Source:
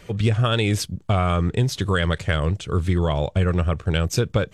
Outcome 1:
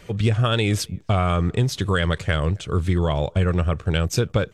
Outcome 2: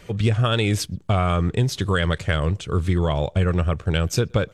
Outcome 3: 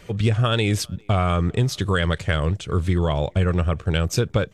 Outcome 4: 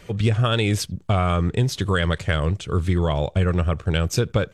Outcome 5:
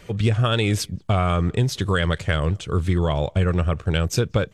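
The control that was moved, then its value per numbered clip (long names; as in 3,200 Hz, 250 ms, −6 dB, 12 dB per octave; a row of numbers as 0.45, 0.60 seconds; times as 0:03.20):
far-end echo of a speakerphone, delay time: 270, 120, 400, 80, 180 milliseconds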